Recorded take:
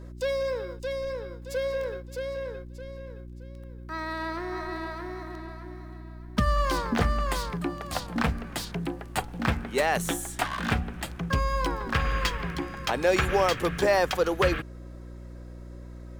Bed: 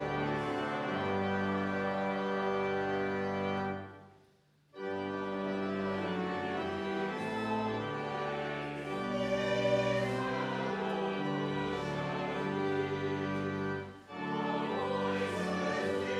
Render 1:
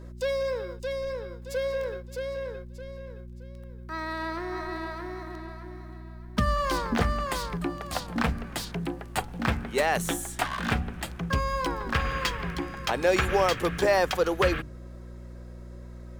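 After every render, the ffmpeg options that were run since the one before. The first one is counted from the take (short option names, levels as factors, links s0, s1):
-af "bandreject=f=50:t=h:w=4,bandreject=f=100:t=h:w=4,bandreject=f=150:t=h:w=4,bandreject=f=200:t=h:w=4,bandreject=f=250:t=h:w=4,bandreject=f=300:t=h:w=4"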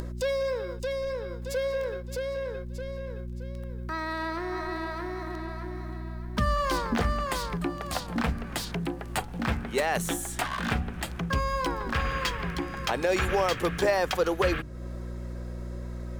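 -af "acompressor=mode=upward:threshold=0.0398:ratio=2.5,alimiter=limit=0.178:level=0:latency=1:release=32"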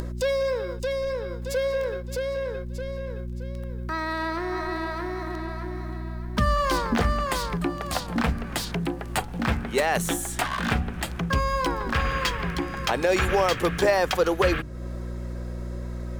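-af "volume=1.5"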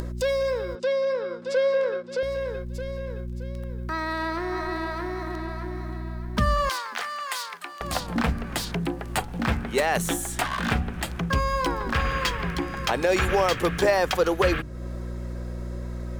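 -filter_complex "[0:a]asettb=1/sr,asplit=3[s0][s1][s2];[s0]atrim=end=0.754[s3];[s1]atrim=start=0.75:end=2.23,asetpts=PTS-STARTPTS,afade=t=in:d=0.004:c=qsin,afade=t=out:st=1.476:d=0.004:c=qsin,highpass=f=200:w=0.5412,highpass=f=200:w=1.3066,equalizer=f=560:t=q:w=4:g=4,equalizer=f=1300:t=q:w=4:g=8,equalizer=f=6700:t=q:w=4:g=-6,lowpass=f=7100:w=0.5412,lowpass=f=7100:w=1.3066[s4];[s2]atrim=start=2.226[s5];[s3][s4]acrossfade=d=0.004:c1=hsin:c2=qsin[s6];[s6][s5]acrossfade=d=0.004:c1=qsin:c2=hsin,asettb=1/sr,asplit=3[s7][s8][s9];[s7]atrim=end=6.694[s10];[s8]atrim=start=6.69:end=7.81,asetpts=PTS-STARTPTS,afade=t=in:d=0.004:c=qsin,afade=t=out:st=1.116:d=0.004:c=qsin,highpass=1200[s11];[s9]atrim=start=7.806[s12];[s10][s11]acrossfade=d=0.004:c1=hsin:c2=qsin[s13];[s13][s12]acrossfade=d=0.004:c1=qsin:c2=hsin"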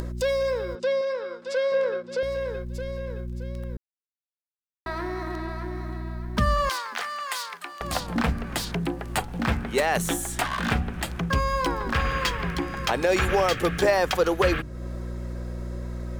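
-filter_complex "[0:a]asettb=1/sr,asplit=3[s0][s1][s2];[s0]atrim=end=1.014[s3];[s1]atrim=start=1.01:end=1.72,asetpts=PTS-STARTPTS,afade=t=in:d=0.004:c=qsin,afade=t=out:st=0.706:d=0.004:c=qsin,equalizer=f=130:w=0.49:g=-11.5[s4];[s2]atrim=start=1.716[s5];[s3][s4]acrossfade=d=0.004:c1=hsin:c2=qsin[s6];[s6][s5]acrossfade=d=0.004:c1=qsin:c2=hsin,asettb=1/sr,asplit=3[s7][s8][s9];[s7]atrim=end=13.404[s10];[s8]atrim=start=13.4:end=13.83,asetpts=PTS-STARTPTS,afade=t=in:d=0.004:c=qsin,afade=t=out:st=0.426:d=0.004:c=qsin,asuperstop=centerf=1000:order=4:qfactor=6.9[s11];[s9]atrim=start=13.826[s12];[s10][s11]acrossfade=d=0.004:c1=hsin:c2=qsin[s13];[s13][s12]acrossfade=d=0.004:c1=qsin:c2=hsin,asplit=3[s14][s15][s16];[s14]atrim=end=3.77,asetpts=PTS-STARTPTS,afade=t=out:st=3.766:d=0.004:c=hsin[s17];[s15]atrim=start=3.77:end=4.86,asetpts=PTS-STARTPTS,volume=0[s18];[s16]atrim=start=4.86,asetpts=PTS-STARTPTS,afade=t=in:d=0.004:c=hsin[s19];[s17][s18][s19]concat=n=3:v=0:a=1"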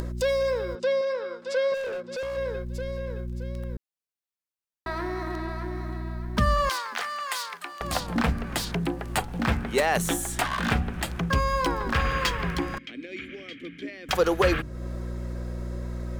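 -filter_complex "[0:a]asplit=3[s0][s1][s2];[s0]afade=t=out:st=1.73:d=0.02[s3];[s1]volume=29.9,asoftclip=hard,volume=0.0335,afade=t=in:st=1.73:d=0.02,afade=t=out:st=2.36:d=0.02[s4];[s2]afade=t=in:st=2.36:d=0.02[s5];[s3][s4][s5]amix=inputs=3:normalize=0,asettb=1/sr,asplit=3[s6][s7][s8];[s6]atrim=end=12.784[s9];[s7]atrim=start=12.78:end=14.09,asetpts=PTS-STARTPTS,afade=t=in:d=0.004:c=qsin,afade=t=out:st=1.306:d=0.004:c=qsin,asplit=3[s10][s11][s12];[s10]bandpass=f=270:t=q:w=8,volume=1[s13];[s11]bandpass=f=2290:t=q:w=8,volume=0.501[s14];[s12]bandpass=f=3010:t=q:w=8,volume=0.355[s15];[s13][s14][s15]amix=inputs=3:normalize=0[s16];[s8]atrim=start=14.086[s17];[s9][s16]acrossfade=d=0.004:c1=hsin:c2=qsin[s18];[s18][s17]acrossfade=d=0.004:c1=qsin:c2=hsin"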